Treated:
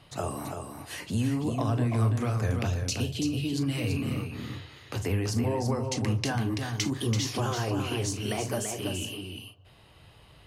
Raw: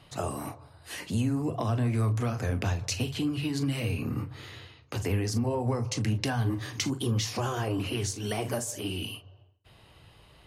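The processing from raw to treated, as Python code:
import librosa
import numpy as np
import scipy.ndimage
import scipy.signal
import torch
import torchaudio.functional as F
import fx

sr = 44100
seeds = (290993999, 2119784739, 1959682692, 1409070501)

p1 = fx.band_shelf(x, sr, hz=1300.0, db=-10.5, octaves=1.7, at=(2.67, 3.58))
y = p1 + fx.echo_single(p1, sr, ms=334, db=-6.0, dry=0)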